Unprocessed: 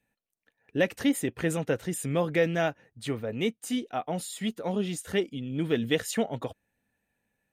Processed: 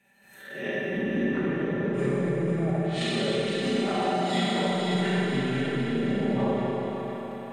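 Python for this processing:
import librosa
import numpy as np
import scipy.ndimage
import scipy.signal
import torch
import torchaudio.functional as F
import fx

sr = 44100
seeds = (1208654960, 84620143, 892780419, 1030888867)

y = fx.spec_swells(x, sr, rise_s=0.4)
y = scipy.signal.sosfilt(scipy.signal.butter(2, 100.0, 'highpass', fs=sr, output='sos'), y)
y = fx.env_lowpass_down(y, sr, base_hz=410.0, full_db=-24.0)
y = fx.peak_eq(y, sr, hz=1800.0, db=4.5, octaves=1.8)
y = y + 0.93 * np.pad(y, (int(5.1 * sr / 1000.0), 0))[:len(y)]
y = fx.over_compress(y, sr, threshold_db=-34.0, ratio=-1.0)
y = fx.echo_split(y, sr, split_hz=630.0, low_ms=166, high_ms=505, feedback_pct=52, wet_db=-7.0)
y = fx.rev_schroeder(y, sr, rt60_s=3.8, comb_ms=30, drr_db=-7.5)
y = fx.pre_swell(y, sr, db_per_s=64.0)
y = F.gain(torch.from_numpy(y), -2.0).numpy()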